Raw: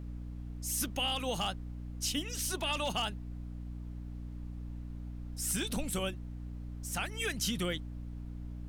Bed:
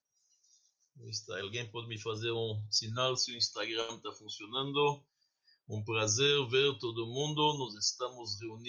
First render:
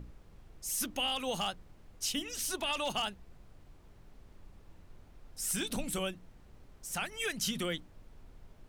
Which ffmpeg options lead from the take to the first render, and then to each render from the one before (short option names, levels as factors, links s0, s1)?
-af "bandreject=f=60:t=h:w=6,bandreject=f=120:t=h:w=6,bandreject=f=180:t=h:w=6,bandreject=f=240:t=h:w=6,bandreject=f=300:t=h:w=6"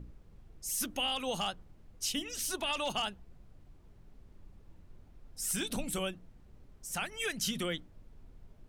-af "afftdn=nr=6:nf=-58"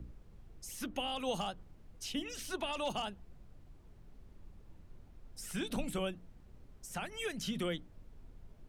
-filter_complex "[0:a]acrossover=split=110|950|3700[s0][s1][s2][s3];[s2]alimiter=level_in=3.76:limit=0.0631:level=0:latency=1:release=130,volume=0.266[s4];[s3]acompressor=threshold=0.00355:ratio=5[s5];[s0][s1][s4][s5]amix=inputs=4:normalize=0"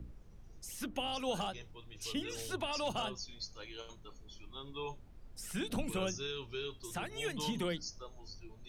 -filter_complex "[1:a]volume=0.237[s0];[0:a][s0]amix=inputs=2:normalize=0"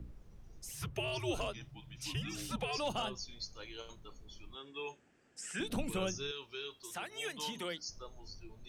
-filter_complex "[0:a]asettb=1/sr,asplit=3[s0][s1][s2];[s0]atrim=end=0.724[s3];[s1]atrim=start=0.72:end=2.78,asetpts=PTS-STARTPTS,afade=t=in:d=0.004:c=qsin,afade=t=out:st=2.056:d=0.004:c=qsin,afreqshift=-150[s4];[s2]atrim=start=2.776[s5];[s3][s4]acrossfade=d=0.004:c1=hsin:c2=qsin[s6];[s6][s5]acrossfade=d=0.004:c1=qsin:c2=hsin,asettb=1/sr,asplit=3[s7][s8][s9];[s7]atrim=end=4.554[s10];[s8]atrim=start=4.55:end=5.6,asetpts=PTS-STARTPTS,afade=t=in:d=0.004:c=qsin,afade=t=out:st=1.046:d=0.004:c=qsin,highpass=280,equalizer=f=610:t=q:w=4:g=-4,equalizer=f=1000:t=q:w=4:g=-7,equalizer=f=1700:t=q:w=4:g=9,equalizer=f=2700:t=q:w=4:g=5,equalizer=f=3900:t=q:w=4:g=-7,equalizer=f=7700:t=q:w=4:g=8,lowpass=f=8400:w=0.5412,lowpass=f=8400:w=1.3066[s11];[s9]atrim=start=5.596[s12];[s10][s11]acrossfade=d=0.004:c1=hsin:c2=qsin[s13];[s13][s12]acrossfade=d=0.004:c1=qsin:c2=hsin,asettb=1/sr,asplit=3[s14][s15][s16];[s14]atrim=end=6.314[s17];[s15]atrim=start=6.31:end=7.89,asetpts=PTS-STARTPTS,afade=t=in:d=0.004:c=qsin,afade=t=out:st=1.576:d=0.004:c=qsin,highpass=f=610:p=1[s18];[s16]atrim=start=7.886[s19];[s17][s18]acrossfade=d=0.004:c1=hsin:c2=qsin[s20];[s20][s19]acrossfade=d=0.004:c1=qsin:c2=hsin"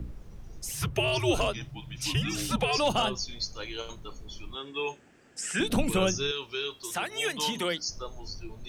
-af "volume=3.35"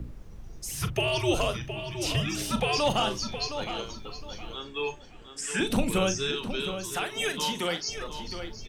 -filter_complex "[0:a]asplit=2[s0][s1];[s1]adelay=41,volume=0.282[s2];[s0][s2]amix=inputs=2:normalize=0,asplit=2[s3][s4];[s4]adelay=715,lowpass=f=3900:p=1,volume=0.355,asplit=2[s5][s6];[s6]adelay=715,lowpass=f=3900:p=1,volume=0.27,asplit=2[s7][s8];[s8]adelay=715,lowpass=f=3900:p=1,volume=0.27[s9];[s3][s5][s7][s9]amix=inputs=4:normalize=0"